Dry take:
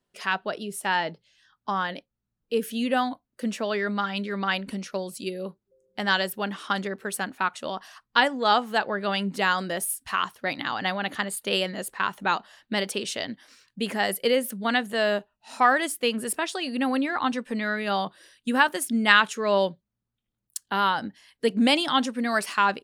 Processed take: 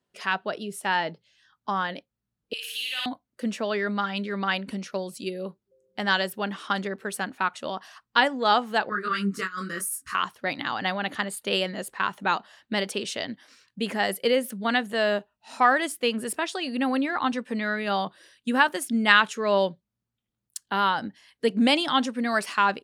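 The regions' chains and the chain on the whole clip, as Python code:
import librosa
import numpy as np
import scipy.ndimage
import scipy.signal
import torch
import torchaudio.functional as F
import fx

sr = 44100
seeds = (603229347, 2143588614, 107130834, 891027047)

y = fx.chain(x, sr, fx.highpass_res(hz=2900.0, q=1.7),
    fx.room_flutter(wall_m=9.4, rt60_s=1.4), at=(2.53, 3.06))
y = fx.chain(y, sr, fx.curve_eq(hz=(440.0, 790.0, 1200.0, 1900.0, 3400.0, 6100.0), db=(0, -28, 11, 2, -7, 6)),
    fx.over_compress(threshold_db=-23.0, ratio=-0.5),
    fx.detune_double(cents=22), at=(8.89, 10.15))
y = scipy.signal.sosfilt(scipy.signal.butter(2, 52.0, 'highpass', fs=sr, output='sos'), y)
y = fx.high_shelf(y, sr, hz=9800.0, db=-7.0)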